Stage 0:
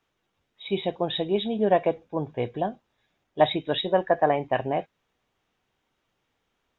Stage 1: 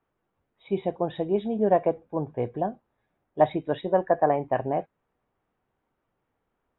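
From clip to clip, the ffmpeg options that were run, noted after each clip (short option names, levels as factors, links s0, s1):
-af "lowpass=1400"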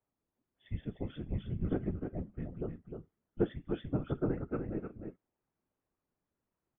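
-af "afreqshift=-350,afftfilt=real='hypot(re,im)*cos(2*PI*random(0))':imag='hypot(re,im)*sin(2*PI*random(1))':win_size=512:overlap=0.75,aecho=1:1:306:0.473,volume=0.562"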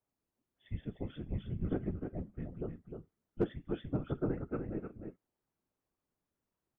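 -af "asoftclip=type=hard:threshold=0.1,volume=0.841"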